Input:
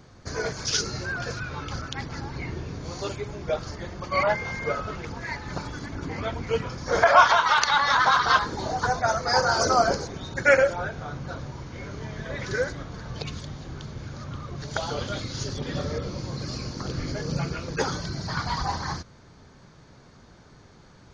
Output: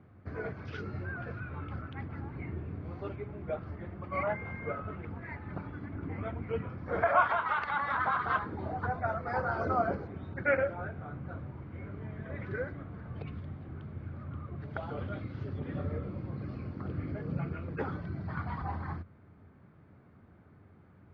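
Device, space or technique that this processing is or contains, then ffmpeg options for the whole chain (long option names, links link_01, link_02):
bass cabinet: -af "highpass=70,equalizer=frequency=89:width_type=q:width=4:gain=10,equalizer=frequency=200:width_type=q:width=4:gain=4,equalizer=frequency=300:width_type=q:width=4:gain=3,equalizer=frequency=510:width_type=q:width=4:gain=-3,equalizer=frequency=940:width_type=q:width=4:gain=-5,equalizer=frequency=1700:width_type=q:width=4:gain=-4,lowpass=frequency=2200:width=0.5412,lowpass=frequency=2200:width=1.3066,volume=-7.5dB"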